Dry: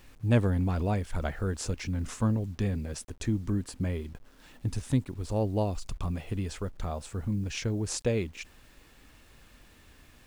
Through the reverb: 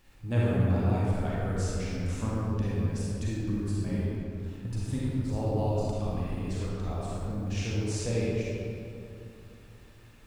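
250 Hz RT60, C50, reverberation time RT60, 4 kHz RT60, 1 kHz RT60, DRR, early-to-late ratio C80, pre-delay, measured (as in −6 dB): 3.3 s, −5.0 dB, 2.7 s, 1.4 s, 2.4 s, −7.0 dB, −1.5 dB, 34 ms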